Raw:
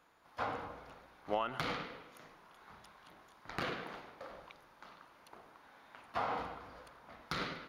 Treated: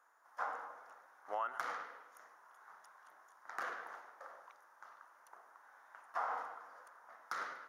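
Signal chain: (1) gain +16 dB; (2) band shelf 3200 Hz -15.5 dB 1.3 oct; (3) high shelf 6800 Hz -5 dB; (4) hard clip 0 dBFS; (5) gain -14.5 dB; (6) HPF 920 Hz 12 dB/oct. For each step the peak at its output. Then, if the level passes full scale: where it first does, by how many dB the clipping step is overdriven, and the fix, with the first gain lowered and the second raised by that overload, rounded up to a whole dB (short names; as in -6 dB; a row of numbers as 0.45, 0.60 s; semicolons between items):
-5.0, -4.5, -4.5, -4.5, -19.0, -21.5 dBFS; no overload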